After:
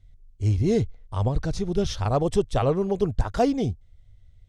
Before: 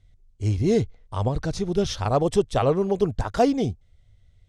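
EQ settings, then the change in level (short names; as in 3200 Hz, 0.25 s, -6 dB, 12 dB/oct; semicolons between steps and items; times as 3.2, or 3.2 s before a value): low shelf 98 Hz +8.5 dB; -2.5 dB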